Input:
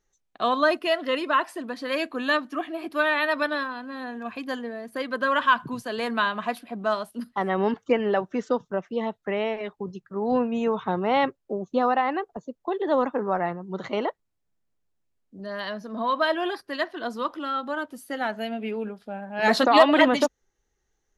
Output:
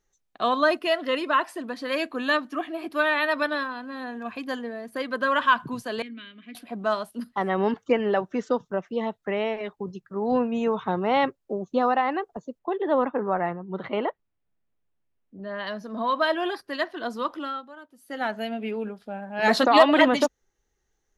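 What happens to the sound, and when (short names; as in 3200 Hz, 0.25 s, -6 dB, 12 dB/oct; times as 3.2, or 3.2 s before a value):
6.02–6.55 vowel filter i
12.59–15.67 LPF 3300 Hz 24 dB/oct
17.42–18.23 dip -15 dB, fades 0.25 s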